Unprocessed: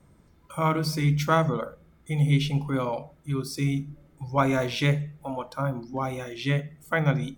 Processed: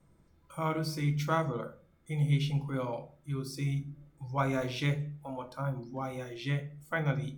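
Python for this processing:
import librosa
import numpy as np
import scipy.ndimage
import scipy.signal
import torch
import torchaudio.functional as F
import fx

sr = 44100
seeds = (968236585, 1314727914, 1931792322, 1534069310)

y = fx.room_shoebox(x, sr, seeds[0], volume_m3=150.0, walls='furnished', distance_m=0.7)
y = y * librosa.db_to_amplitude(-8.5)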